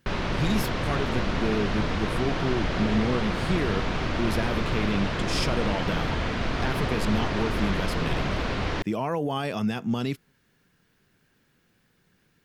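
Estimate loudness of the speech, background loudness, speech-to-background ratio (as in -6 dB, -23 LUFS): -30.0 LUFS, -28.5 LUFS, -1.5 dB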